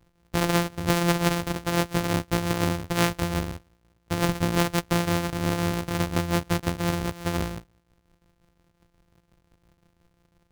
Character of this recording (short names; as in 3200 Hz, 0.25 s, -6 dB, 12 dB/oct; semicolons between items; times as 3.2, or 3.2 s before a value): a buzz of ramps at a fixed pitch in blocks of 256 samples; tremolo triangle 5.7 Hz, depth 60%